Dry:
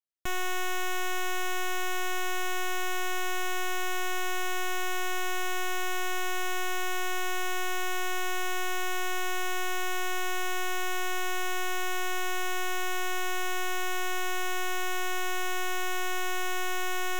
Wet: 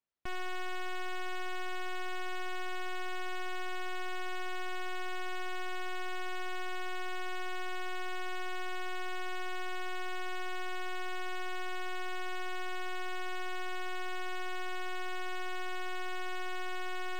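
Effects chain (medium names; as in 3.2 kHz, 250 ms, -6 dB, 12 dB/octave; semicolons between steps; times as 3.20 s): treble shelf 3.5 kHz -10.5 dB; saturation -39 dBFS, distortion -18 dB; decimation joined by straight lines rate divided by 4×; trim +5 dB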